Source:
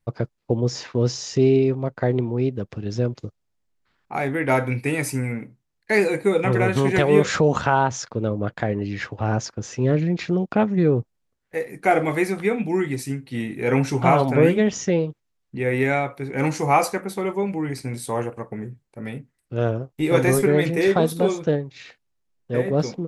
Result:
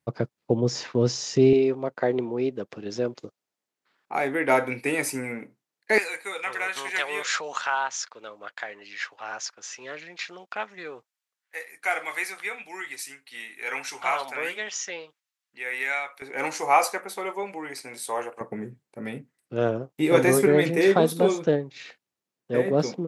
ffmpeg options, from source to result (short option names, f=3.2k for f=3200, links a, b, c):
-af "asetnsamples=n=441:p=0,asendcmd='1.53 highpass f 310;5.98 highpass f 1300;16.22 highpass f 610;18.41 highpass f 190',highpass=140"